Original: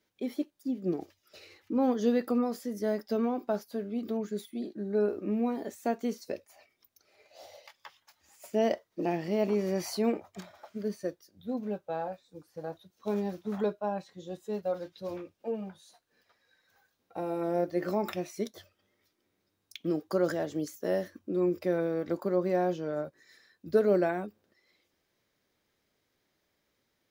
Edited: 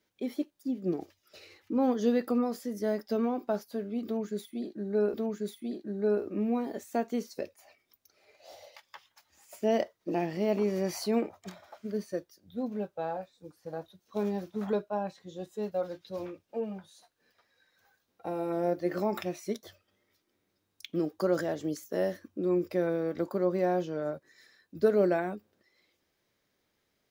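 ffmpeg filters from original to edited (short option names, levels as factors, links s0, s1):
-filter_complex "[0:a]asplit=2[s0][s1];[s0]atrim=end=5.142[s2];[s1]atrim=start=4.048[s3];[s2][s3]acrossfade=d=0.004:c1=hsin:c2=hsin"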